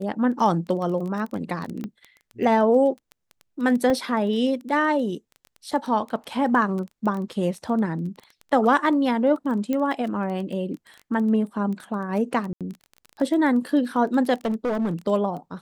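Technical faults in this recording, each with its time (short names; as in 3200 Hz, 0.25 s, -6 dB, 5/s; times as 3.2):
crackle 15/s -30 dBFS
1.84 pop -20 dBFS
3.9 gap 2.2 ms
9.73 pop -14 dBFS
12.53–12.61 gap 77 ms
14.45–14.94 clipped -20.5 dBFS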